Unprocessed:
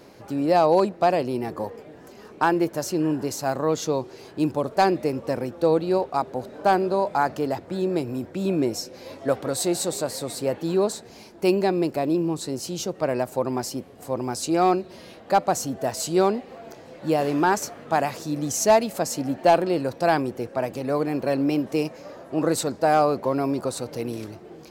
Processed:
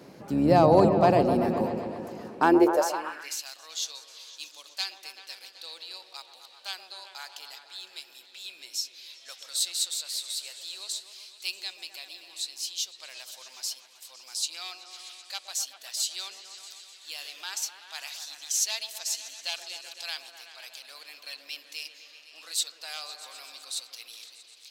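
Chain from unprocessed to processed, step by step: octave divider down 2 oct, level 0 dB; bass shelf 140 Hz -4.5 dB; delay with an opening low-pass 127 ms, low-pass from 750 Hz, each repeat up 1 oct, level -6 dB; high-pass sweep 160 Hz -> 3.5 kHz, 2.34–3.47 s; trim -2 dB

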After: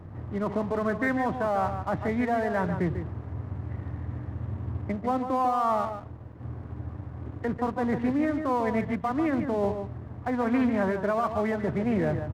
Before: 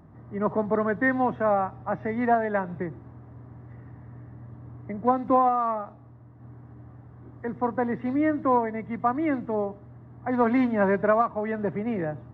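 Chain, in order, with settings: peaking EQ 88 Hz +14 dB 0.52 oct; reverse; compression 6:1, threshold -28 dBFS, peak gain reduction 11.5 dB; reverse; peak limiter -25 dBFS, peak gain reduction 6 dB; crossover distortion -52 dBFS; echo from a far wall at 25 m, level -8 dB; loudspeaker Doppler distortion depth 0.14 ms; trim +7 dB

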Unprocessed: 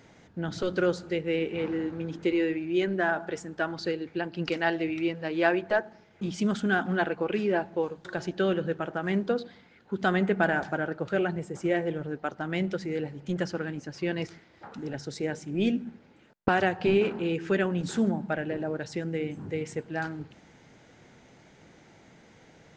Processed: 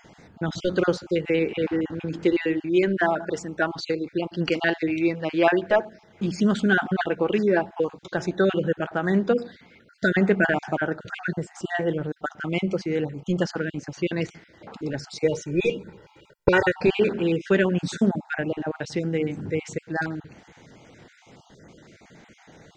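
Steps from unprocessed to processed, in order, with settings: random holes in the spectrogram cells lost 29%; 15.24–16.83 s: comb 2.1 ms, depth 97%; trim +6 dB

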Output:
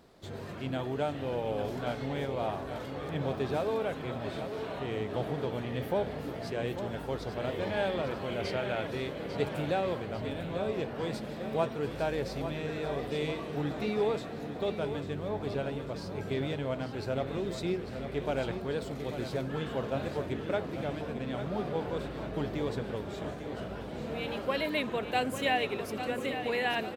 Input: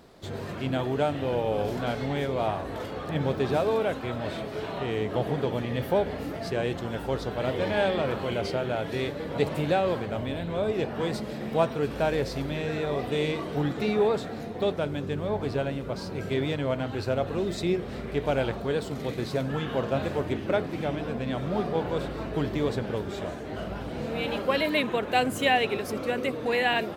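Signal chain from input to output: 8.40–8.87 s: peaking EQ 2.2 kHz +7.5 dB 1.4 oct; feedback delay 847 ms, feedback 55%, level -9.5 dB; trim -6 dB

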